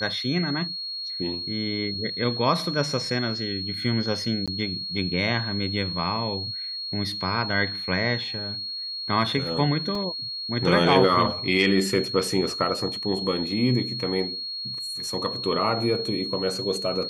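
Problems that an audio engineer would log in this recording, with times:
tone 4300 Hz -30 dBFS
4.46–4.48 gap 16 ms
9.95 gap 3.2 ms

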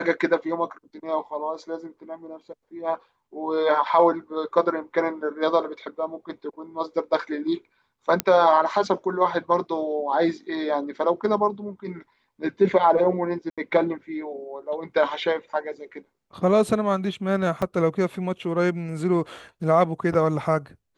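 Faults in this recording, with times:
8.2 pop -5 dBFS
13.5–13.58 gap 76 ms
17.62 gap 4.1 ms

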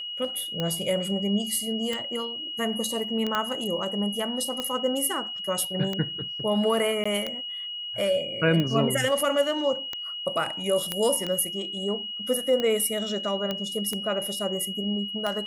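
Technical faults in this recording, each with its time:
tick 45 rpm -15 dBFS
tone 2900 Hz -32 dBFS
3.35 pop -12 dBFS
7.04–7.05 gap 15 ms
10.92 pop -11 dBFS
13.51 pop -15 dBFS

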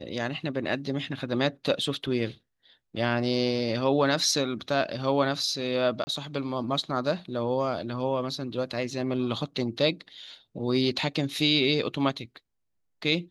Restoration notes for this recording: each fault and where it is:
6.04–6.07 gap 30 ms

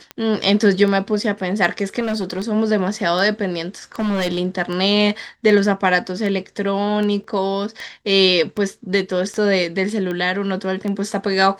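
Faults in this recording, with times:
tick 78 rpm -15 dBFS
1.99–2.5 clipped -18 dBFS
3.99–4.39 clipped -17 dBFS
7.24 gap 3.4 ms

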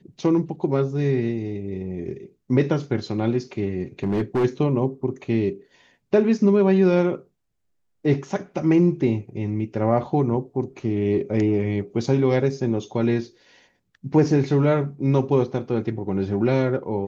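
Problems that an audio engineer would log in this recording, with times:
4.03–4.45 clipped -17.5 dBFS

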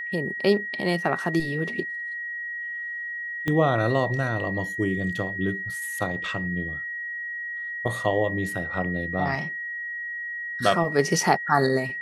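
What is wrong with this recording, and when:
tone 1900 Hz -30 dBFS
3.48 pop -14 dBFS

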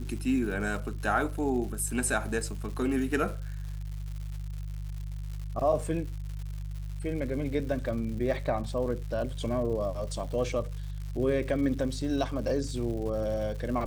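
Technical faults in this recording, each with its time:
crackle 220/s -39 dBFS
hum 50 Hz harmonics 3 -36 dBFS

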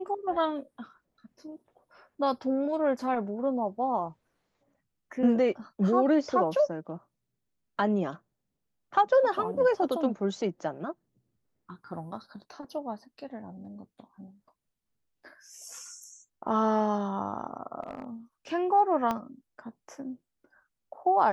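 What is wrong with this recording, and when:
17.83–18.04 clipped -31.5 dBFS
19.11 pop -17 dBFS

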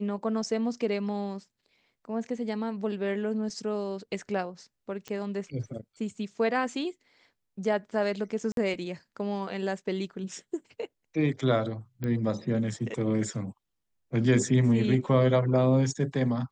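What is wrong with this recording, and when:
5.08 pop -24 dBFS
8.52–8.57 gap 52 ms
12.04 pop -20 dBFS

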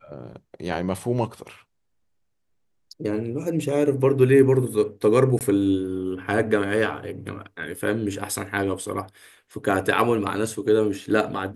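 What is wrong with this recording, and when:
5.39–5.41 gap 18 ms

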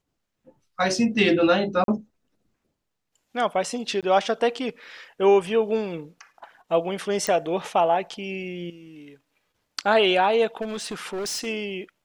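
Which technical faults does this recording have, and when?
1.84–1.88 gap 42 ms
4.01–4.03 gap 17 ms
7.27 pop -10 dBFS
10.61–11.47 clipped -27 dBFS

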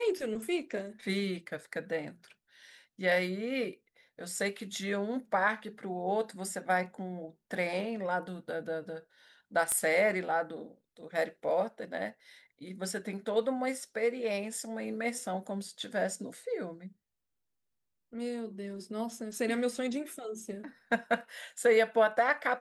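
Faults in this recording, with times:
9.72 pop -17 dBFS

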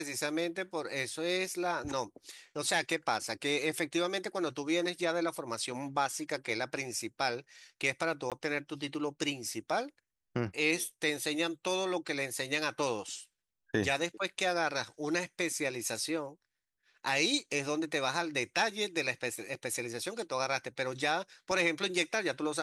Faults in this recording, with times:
8.3–8.32 gap 17 ms
21.51 gap 3.6 ms

